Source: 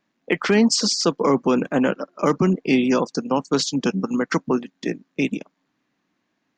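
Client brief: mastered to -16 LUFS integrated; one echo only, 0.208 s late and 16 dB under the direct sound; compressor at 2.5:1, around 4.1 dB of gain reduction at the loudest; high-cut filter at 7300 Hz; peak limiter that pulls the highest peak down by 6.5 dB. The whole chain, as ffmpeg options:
-af "lowpass=7.3k,acompressor=threshold=-19dB:ratio=2.5,alimiter=limit=-15dB:level=0:latency=1,aecho=1:1:208:0.158,volume=10dB"

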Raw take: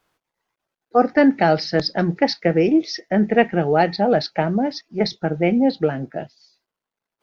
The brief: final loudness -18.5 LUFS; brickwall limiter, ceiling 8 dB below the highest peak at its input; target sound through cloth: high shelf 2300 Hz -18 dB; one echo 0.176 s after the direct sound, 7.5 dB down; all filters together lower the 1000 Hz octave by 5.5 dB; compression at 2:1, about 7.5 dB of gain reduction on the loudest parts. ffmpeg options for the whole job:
-af "equalizer=f=1k:t=o:g=-5.5,acompressor=threshold=-25dB:ratio=2,alimiter=limit=-19dB:level=0:latency=1,highshelf=f=2.3k:g=-18,aecho=1:1:176:0.422,volume=11.5dB"

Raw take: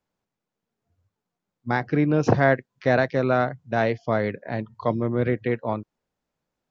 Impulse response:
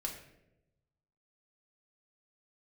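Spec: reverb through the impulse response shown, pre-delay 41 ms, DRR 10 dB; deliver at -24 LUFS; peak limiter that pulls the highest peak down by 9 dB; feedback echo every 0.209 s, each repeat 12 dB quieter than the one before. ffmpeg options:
-filter_complex "[0:a]alimiter=limit=-14dB:level=0:latency=1,aecho=1:1:209|418|627:0.251|0.0628|0.0157,asplit=2[a][b];[1:a]atrim=start_sample=2205,adelay=41[c];[b][c]afir=irnorm=-1:irlink=0,volume=-10.5dB[d];[a][d]amix=inputs=2:normalize=0,volume=2dB"

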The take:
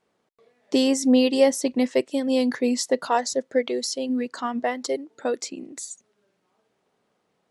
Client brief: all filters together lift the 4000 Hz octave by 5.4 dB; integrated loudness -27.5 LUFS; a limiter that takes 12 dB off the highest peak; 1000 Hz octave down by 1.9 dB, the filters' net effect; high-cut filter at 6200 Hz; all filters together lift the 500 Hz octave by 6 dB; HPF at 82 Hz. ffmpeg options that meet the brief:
-af "highpass=82,lowpass=6.2k,equalizer=f=500:t=o:g=8,equalizer=f=1k:t=o:g=-7.5,equalizer=f=4k:t=o:g=8.5,volume=-3.5dB,alimiter=limit=-17.5dB:level=0:latency=1"

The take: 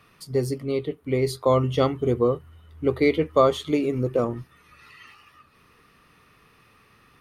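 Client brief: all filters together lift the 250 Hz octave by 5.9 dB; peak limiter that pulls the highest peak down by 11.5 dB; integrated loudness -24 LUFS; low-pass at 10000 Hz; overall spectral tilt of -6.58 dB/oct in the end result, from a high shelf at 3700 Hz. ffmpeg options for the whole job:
-af "lowpass=10k,equalizer=f=250:t=o:g=7,highshelf=f=3.7k:g=4.5,volume=1.5dB,alimiter=limit=-13.5dB:level=0:latency=1"

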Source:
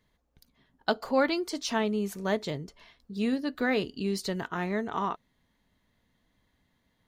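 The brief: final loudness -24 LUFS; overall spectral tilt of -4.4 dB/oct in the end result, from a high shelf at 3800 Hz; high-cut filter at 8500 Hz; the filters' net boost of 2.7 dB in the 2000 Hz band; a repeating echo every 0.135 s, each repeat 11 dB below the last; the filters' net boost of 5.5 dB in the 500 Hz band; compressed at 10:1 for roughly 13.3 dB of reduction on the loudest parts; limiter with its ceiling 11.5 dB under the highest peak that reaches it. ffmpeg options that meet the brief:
-af "lowpass=8.5k,equalizer=f=500:t=o:g=6.5,equalizer=f=2k:t=o:g=5,highshelf=f=3.8k:g=-8.5,acompressor=threshold=-28dB:ratio=10,alimiter=level_in=1dB:limit=-24dB:level=0:latency=1,volume=-1dB,aecho=1:1:135|270|405:0.282|0.0789|0.0221,volume=11.5dB"

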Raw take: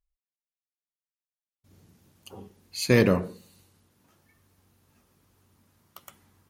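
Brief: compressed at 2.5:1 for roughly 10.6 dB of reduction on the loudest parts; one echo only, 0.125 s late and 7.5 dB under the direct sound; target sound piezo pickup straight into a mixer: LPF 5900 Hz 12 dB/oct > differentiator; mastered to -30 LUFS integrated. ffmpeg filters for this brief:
-af "acompressor=threshold=-30dB:ratio=2.5,lowpass=5.9k,aderivative,aecho=1:1:125:0.422,volume=14dB"

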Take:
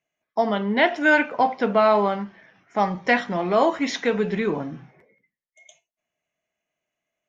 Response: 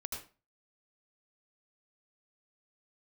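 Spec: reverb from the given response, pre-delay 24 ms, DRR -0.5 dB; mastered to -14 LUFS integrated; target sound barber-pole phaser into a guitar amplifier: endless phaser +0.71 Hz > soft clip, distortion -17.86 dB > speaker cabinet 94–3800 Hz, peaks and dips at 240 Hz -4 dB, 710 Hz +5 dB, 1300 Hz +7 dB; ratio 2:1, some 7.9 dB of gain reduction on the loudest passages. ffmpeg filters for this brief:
-filter_complex "[0:a]acompressor=threshold=-28dB:ratio=2,asplit=2[a][b];[1:a]atrim=start_sample=2205,adelay=24[c];[b][c]afir=irnorm=-1:irlink=0,volume=1dB[d];[a][d]amix=inputs=2:normalize=0,asplit=2[e][f];[f]afreqshift=0.71[g];[e][g]amix=inputs=2:normalize=1,asoftclip=threshold=-19.5dB,highpass=94,equalizer=f=240:t=q:w=4:g=-4,equalizer=f=710:t=q:w=4:g=5,equalizer=f=1.3k:t=q:w=4:g=7,lowpass=f=3.8k:w=0.5412,lowpass=f=3.8k:w=1.3066,volume=13.5dB"

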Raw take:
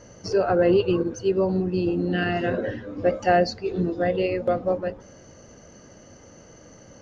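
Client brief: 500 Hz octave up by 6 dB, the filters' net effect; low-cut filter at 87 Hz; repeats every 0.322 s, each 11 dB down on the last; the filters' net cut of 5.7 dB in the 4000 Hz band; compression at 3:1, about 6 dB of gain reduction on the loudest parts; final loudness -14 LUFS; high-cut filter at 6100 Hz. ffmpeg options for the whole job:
-af "highpass=87,lowpass=6.1k,equalizer=f=500:t=o:g=7.5,equalizer=f=4k:t=o:g=-8,acompressor=threshold=-18dB:ratio=3,aecho=1:1:322|644|966:0.282|0.0789|0.0221,volume=8.5dB"

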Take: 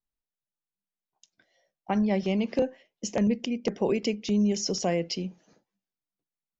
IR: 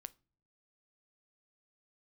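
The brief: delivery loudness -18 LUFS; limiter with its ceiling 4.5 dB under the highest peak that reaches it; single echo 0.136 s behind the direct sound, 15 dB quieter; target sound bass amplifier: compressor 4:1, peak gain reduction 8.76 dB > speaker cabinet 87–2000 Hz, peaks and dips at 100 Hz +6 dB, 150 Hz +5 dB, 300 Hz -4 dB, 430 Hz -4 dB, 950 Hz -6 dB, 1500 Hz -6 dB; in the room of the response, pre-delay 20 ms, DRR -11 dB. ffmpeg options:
-filter_complex "[0:a]alimiter=limit=-18.5dB:level=0:latency=1,aecho=1:1:136:0.178,asplit=2[a][b];[1:a]atrim=start_sample=2205,adelay=20[c];[b][c]afir=irnorm=-1:irlink=0,volume=16.5dB[d];[a][d]amix=inputs=2:normalize=0,acompressor=threshold=-20dB:ratio=4,highpass=f=87:w=0.5412,highpass=f=87:w=1.3066,equalizer=f=100:t=q:w=4:g=6,equalizer=f=150:t=q:w=4:g=5,equalizer=f=300:t=q:w=4:g=-4,equalizer=f=430:t=q:w=4:g=-4,equalizer=f=950:t=q:w=4:g=-6,equalizer=f=1.5k:t=q:w=4:g=-6,lowpass=f=2k:w=0.5412,lowpass=f=2k:w=1.3066,volume=7.5dB"

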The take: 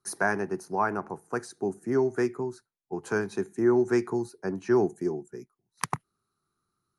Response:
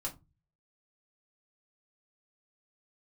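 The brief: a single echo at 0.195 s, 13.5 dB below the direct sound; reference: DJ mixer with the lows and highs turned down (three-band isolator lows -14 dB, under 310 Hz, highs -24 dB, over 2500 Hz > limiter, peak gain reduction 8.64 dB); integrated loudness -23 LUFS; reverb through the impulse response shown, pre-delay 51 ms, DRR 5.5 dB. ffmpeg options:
-filter_complex "[0:a]aecho=1:1:195:0.211,asplit=2[a][b];[1:a]atrim=start_sample=2205,adelay=51[c];[b][c]afir=irnorm=-1:irlink=0,volume=-6dB[d];[a][d]amix=inputs=2:normalize=0,acrossover=split=310 2500:gain=0.2 1 0.0631[e][f][g];[e][f][g]amix=inputs=3:normalize=0,volume=10dB,alimiter=limit=-11.5dB:level=0:latency=1"

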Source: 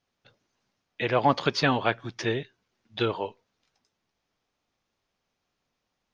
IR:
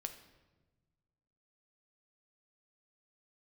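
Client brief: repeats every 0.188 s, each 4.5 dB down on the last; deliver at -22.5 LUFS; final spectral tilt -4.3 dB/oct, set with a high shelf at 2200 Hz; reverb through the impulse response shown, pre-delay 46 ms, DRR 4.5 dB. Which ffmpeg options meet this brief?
-filter_complex "[0:a]highshelf=f=2.2k:g=8,aecho=1:1:188|376|564|752|940|1128|1316|1504|1692:0.596|0.357|0.214|0.129|0.0772|0.0463|0.0278|0.0167|0.01,asplit=2[a][b];[1:a]atrim=start_sample=2205,adelay=46[c];[b][c]afir=irnorm=-1:irlink=0,volume=-2dB[d];[a][d]amix=inputs=2:normalize=0"

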